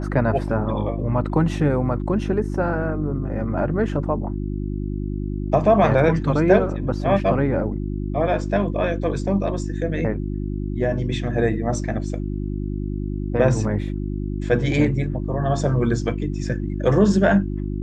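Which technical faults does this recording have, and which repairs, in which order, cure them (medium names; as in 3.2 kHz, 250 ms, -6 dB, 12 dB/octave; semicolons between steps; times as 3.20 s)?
hum 50 Hz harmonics 7 -26 dBFS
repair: de-hum 50 Hz, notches 7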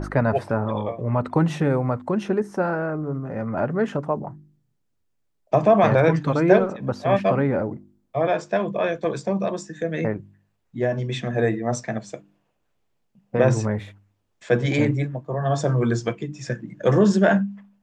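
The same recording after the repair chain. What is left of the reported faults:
nothing left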